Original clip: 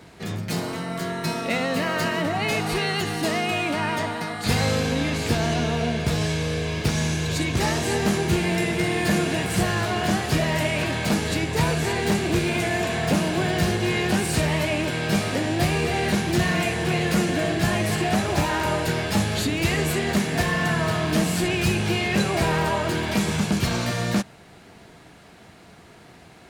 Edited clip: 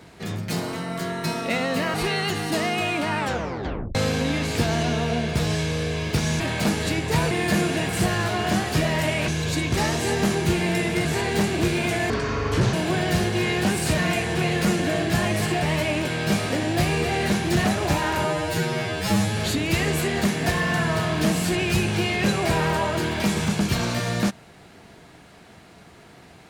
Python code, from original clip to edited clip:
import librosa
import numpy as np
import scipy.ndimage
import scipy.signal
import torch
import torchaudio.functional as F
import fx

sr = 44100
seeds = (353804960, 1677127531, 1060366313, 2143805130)

y = fx.edit(x, sr, fx.cut(start_s=1.94, length_s=0.71),
    fx.tape_stop(start_s=3.88, length_s=0.78),
    fx.swap(start_s=7.11, length_s=1.77, other_s=10.85, other_length_s=0.91),
    fx.speed_span(start_s=12.81, length_s=0.4, speed=0.63),
    fx.move(start_s=16.47, length_s=1.65, to_s=14.45),
    fx.stretch_span(start_s=18.72, length_s=0.56, factor=2.0), tone=tone)